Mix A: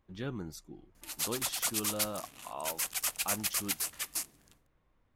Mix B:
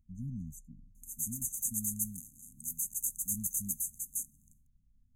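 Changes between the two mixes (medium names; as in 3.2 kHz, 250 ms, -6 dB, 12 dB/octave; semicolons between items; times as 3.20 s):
speech: add bass shelf 65 Hz +8 dB; master: add brick-wall FIR band-stop 270–6100 Hz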